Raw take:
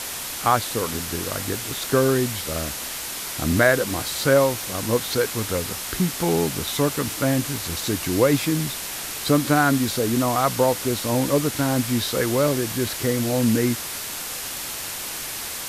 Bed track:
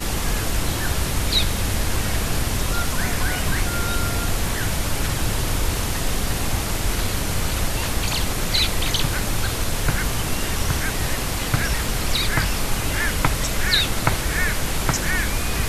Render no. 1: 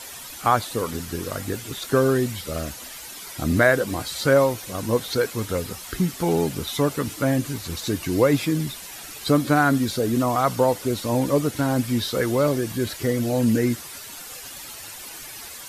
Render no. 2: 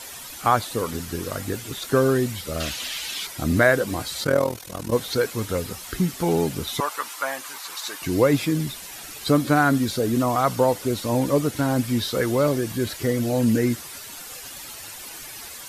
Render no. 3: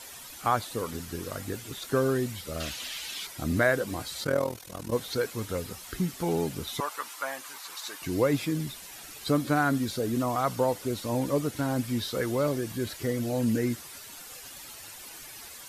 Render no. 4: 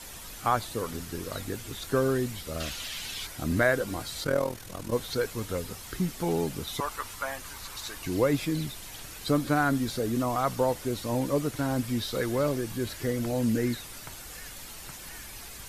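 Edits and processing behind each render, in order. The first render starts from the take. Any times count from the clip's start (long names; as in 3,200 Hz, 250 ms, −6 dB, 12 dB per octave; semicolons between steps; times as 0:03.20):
broadband denoise 11 dB, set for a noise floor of −32 dBFS
0:02.60–0:03.27: parametric band 3,200 Hz +14 dB 1.7 octaves; 0:04.24–0:04.93: amplitude modulation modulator 41 Hz, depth 75%; 0:06.80–0:08.02: high-pass with resonance 980 Hz, resonance Q 2
level −6.5 dB
mix in bed track −26 dB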